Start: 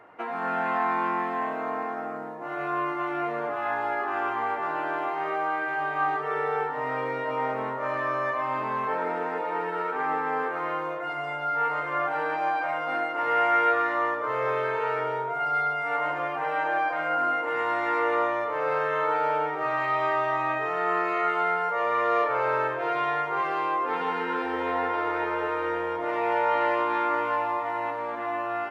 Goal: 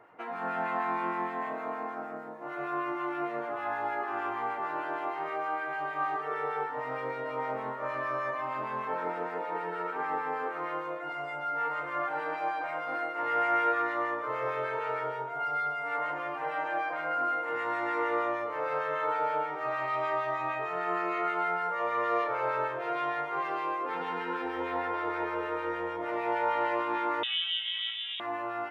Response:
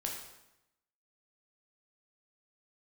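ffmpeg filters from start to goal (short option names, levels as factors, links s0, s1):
-filter_complex "[0:a]acrossover=split=1300[s0][s1];[s0]aeval=exprs='val(0)*(1-0.5/2+0.5/2*cos(2*PI*6.5*n/s))':c=same[s2];[s1]aeval=exprs='val(0)*(1-0.5/2-0.5/2*cos(2*PI*6.5*n/s))':c=same[s3];[s2][s3]amix=inputs=2:normalize=0,asplit=2[s4][s5];[1:a]atrim=start_sample=2205[s6];[s5][s6]afir=irnorm=-1:irlink=0,volume=0.398[s7];[s4][s7]amix=inputs=2:normalize=0,asettb=1/sr,asplit=3[s8][s9][s10];[s8]atrim=end=27.234[s11];[s9]atrim=start=27.23:end=28.2,asetpts=PTS-STARTPTS,afade=t=in:d=0.004:c=qsin,afade=t=out:st=0.966:d=0.004:c=qsin,lowpass=f=3400:t=q:w=0.5098,lowpass=f=3400:t=q:w=0.6013,lowpass=f=3400:t=q:w=0.9,lowpass=f=3400:t=q:w=2.563,afreqshift=-4000[s12];[s10]atrim=start=28.196[s13];[s11][s12]acrossfade=d=0.004:c1=hsin:c2=qsin[s14];[s14][s13]acrossfade=d=0.004:c1=qsin:c2=hsin,volume=0.531"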